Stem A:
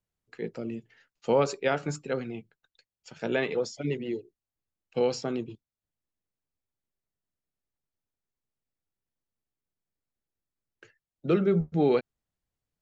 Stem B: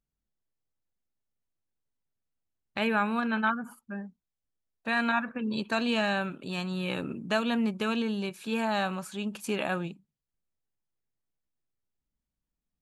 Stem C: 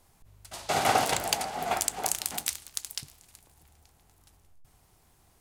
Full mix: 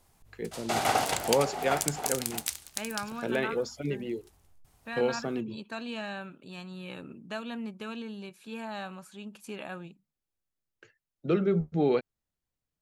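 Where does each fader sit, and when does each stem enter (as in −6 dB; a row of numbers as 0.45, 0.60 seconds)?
−2.0, −9.5, −2.0 decibels; 0.00, 0.00, 0.00 seconds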